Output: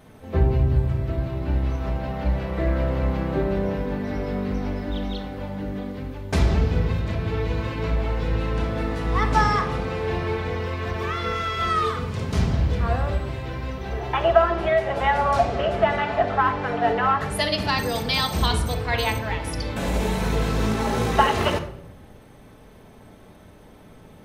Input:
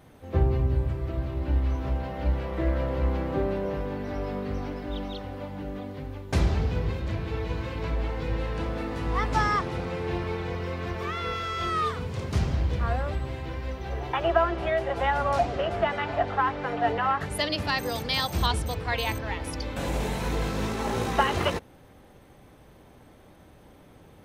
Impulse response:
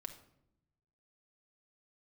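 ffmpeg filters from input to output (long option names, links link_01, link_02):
-filter_complex "[1:a]atrim=start_sample=2205[link_01];[0:a][link_01]afir=irnorm=-1:irlink=0,volume=8dB"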